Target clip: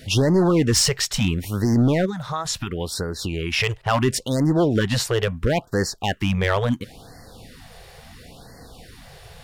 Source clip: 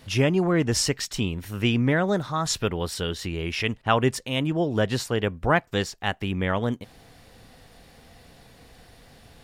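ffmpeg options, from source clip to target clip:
ffmpeg -i in.wav -filter_complex "[0:a]alimiter=limit=-14.5dB:level=0:latency=1:release=24,asplit=3[link_01][link_02][link_03];[link_01]afade=type=out:start_time=2.05:duration=0.02[link_04];[link_02]acompressor=threshold=-30dB:ratio=6,afade=type=in:start_time=2.05:duration=0.02,afade=type=out:start_time=3.51:duration=0.02[link_05];[link_03]afade=type=in:start_time=3.51:duration=0.02[link_06];[link_04][link_05][link_06]amix=inputs=3:normalize=0,asoftclip=type=hard:threshold=-20dB,afftfilt=real='re*(1-between(b*sr/1024,230*pow(3000/230,0.5+0.5*sin(2*PI*0.73*pts/sr))/1.41,230*pow(3000/230,0.5+0.5*sin(2*PI*0.73*pts/sr))*1.41))':imag='im*(1-between(b*sr/1024,230*pow(3000/230,0.5+0.5*sin(2*PI*0.73*pts/sr))/1.41,230*pow(3000/230,0.5+0.5*sin(2*PI*0.73*pts/sr))*1.41))':win_size=1024:overlap=0.75,volume=7.5dB" out.wav

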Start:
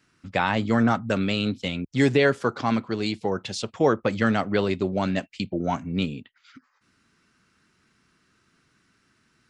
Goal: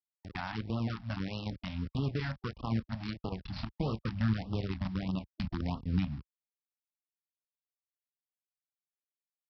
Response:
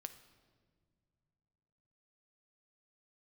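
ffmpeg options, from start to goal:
-filter_complex "[0:a]anlmdn=25.1,asplit=2[link_01][link_02];[link_02]adelay=27,volume=-6dB[link_03];[link_01][link_03]amix=inputs=2:normalize=0,aresample=11025,acrusher=bits=4:dc=4:mix=0:aa=0.000001,aresample=44100,acompressor=threshold=-31dB:ratio=4,highpass=48,asplit=2[link_04][link_05];[link_05]alimiter=level_in=1.5dB:limit=-24dB:level=0:latency=1:release=22,volume=-1.5dB,volume=1dB[link_06];[link_04][link_06]amix=inputs=2:normalize=0,equalizer=frequency=4100:width_type=o:width=2.1:gain=-5,acompressor=mode=upward:threshold=-49dB:ratio=2.5,asubboost=boost=6:cutoff=180,afftfilt=real='re*(1-between(b*sr/1024,380*pow(1900/380,0.5+0.5*sin(2*PI*1.6*pts/sr))/1.41,380*pow(1900/380,0.5+0.5*sin(2*PI*1.6*pts/sr))*1.41))':imag='im*(1-between(b*sr/1024,380*pow(1900/380,0.5+0.5*sin(2*PI*1.6*pts/sr))/1.41,380*pow(1900/380,0.5+0.5*sin(2*PI*1.6*pts/sr))*1.41))':win_size=1024:overlap=0.75,volume=-7.5dB"

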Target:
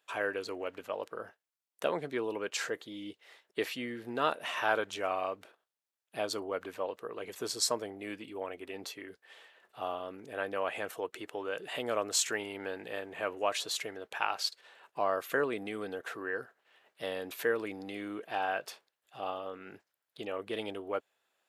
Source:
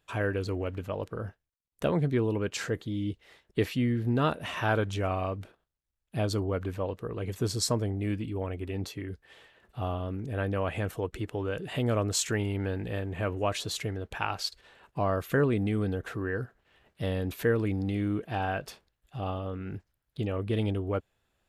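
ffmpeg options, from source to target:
ffmpeg -i in.wav -af "highpass=500" out.wav

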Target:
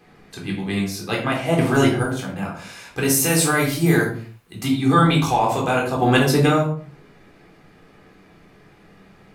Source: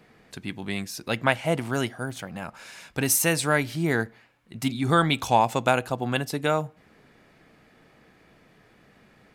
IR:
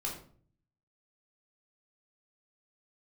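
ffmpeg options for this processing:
-filter_complex "[0:a]asettb=1/sr,asplit=3[link_01][link_02][link_03];[link_01]atrim=end=1.584[link_04];[link_02]atrim=start=1.58:end=2.03,asetpts=PTS-STARTPTS,afade=type=in:duration=0.004:curve=qsin,afade=type=out:start_time=0.446:duration=0.004:curve=qsin,acontrast=53[link_05];[link_03]atrim=start=2.026[link_06];[link_04][link_05]acrossfade=duration=0.004:curve1=hsin:curve2=qsin[link_07];[link_07][link_06]acrossfade=duration=0.004:curve1=qsin:curve2=hsin,asettb=1/sr,asplit=3[link_08][link_09][link_10];[link_08]atrim=end=3.244[link_11];[link_09]atrim=start=3.24:end=4.6,asetpts=PTS-STARTPTS,afade=type=in:duration=0.004:curve=qsin,afade=type=out:start_time=1.356:duration=0.004:curve=qsin,aemphasis=mode=production:type=50kf[link_12];[link_10]atrim=start=4.596[link_13];[link_11][link_12]acrossfade=duration=0.004:curve1=hsin:curve2=qsin[link_14];[link_14][link_13]acrossfade=duration=0.004:curve1=qsin:curve2=hsin,alimiter=limit=-12.5dB:level=0:latency=1:release=23,asettb=1/sr,asplit=3[link_15][link_16][link_17];[link_15]atrim=end=5.964[link_18];[link_16]atrim=start=5.96:end=6.46,asetpts=PTS-STARTPTS,afade=type=in:duration=0.004:curve=qsin,afade=type=out:start_time=0.496:duration=0.004:curve=qsin,acontrast=57[link_19];[link_17]atrim=start=6.456[link_20];[link_18][link_19]acrossfade=duration=0.004:curve1=hsin:curve2=qsin[link_21];[link_21][link_20]acrossfade=duration=0.004:curve1=qsin:curve2=hsin[link_22];[1:a]atrim=start_sample=2205,afade=type=out:start_time=0.39:duration=0.01,atrim=end_sample=17640[link_23];[link_22][link_23]afir=irnorm=-1:irlink=0,volume=3.5dB"

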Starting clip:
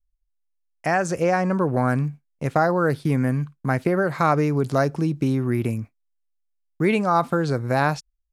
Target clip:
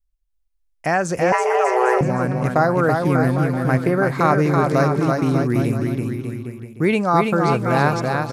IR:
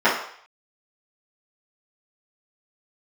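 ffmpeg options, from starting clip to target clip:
-filter_complex "[0:a]aecho=1:1:330|594|805.2|974.2|1109:0.631|0.398|0.251|0.158|0.1,asettb=1/sr,asplit=3[link_01][link_02][link_03];[link_01]atrim=end=1.324[link_04];[link_02]atrim=start=1.32:end=2.01,asetpts=PTS-STARTPTS,afade=type=in:duration=0.004:curve=qsin,afade=type=out:start_time=0.686:duration=0.004:curve=qsin,afreqshift=250[link_05];[link_03]atrim=start=2.006[link_06];[link_04][link_05]acrossfade=duration=0.004:curve1=hsin:curve2=qsin[link_07];[link_07][link_06]acrossfade=duration=0.004:curve1=qsin:curve2=hsin,volume=2dB"

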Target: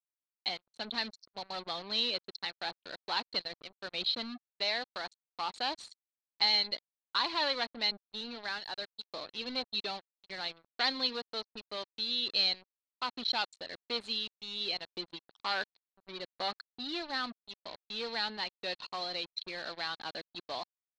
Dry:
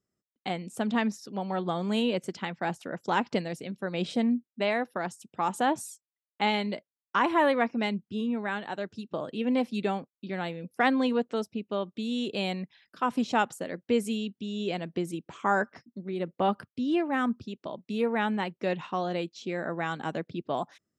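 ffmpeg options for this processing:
ffmpeg -i in.wav -af "afftfilt=real='re*gte(hypot(re,im),0.0126)':imag='im*gte(hypot(re,im),0.0126)':win_size=1024:overlap=0.75,asoftclip=type=hard:threshold=-21.5dB,highpass=frequency=1200:poles=1,acrusher=bits=6:mix=0:aa=0.5,lowpass=frequency=4200:width_type=q:width=14,volume=-3.5dB" out.wav

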